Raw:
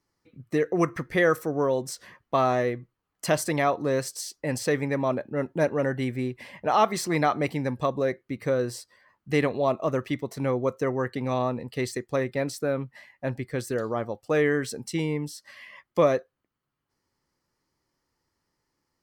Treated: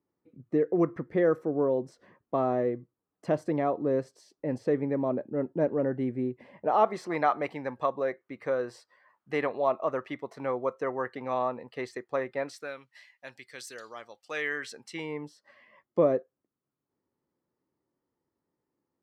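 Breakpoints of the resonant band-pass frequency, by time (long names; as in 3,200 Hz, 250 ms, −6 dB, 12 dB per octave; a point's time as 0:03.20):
resonant band-pass, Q 0.82
0:06.44 330 Hz
0:07.26 970 Hz
0:12.40 970 Hz
0:12.80 4,400 Hz
0:14.08 4,400 Hz
0:14.94 1,500 Hz
0:15.66 330 Hz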